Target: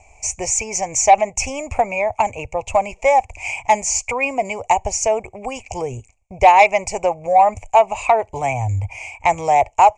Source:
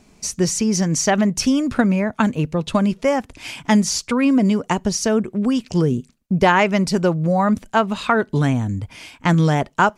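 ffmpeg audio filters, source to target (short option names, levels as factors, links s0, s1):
-af "firequalizer=gain_entry='entry(100,0);entry(150,-27);entry(230,-27);entry(510,-6);entry(780,7);entry(1500,-28);entry(2300,6);entry(3600,-27);entry(7000,2);entry(12000,-29)':delay=0.05:min_phase=1,acontrast=86"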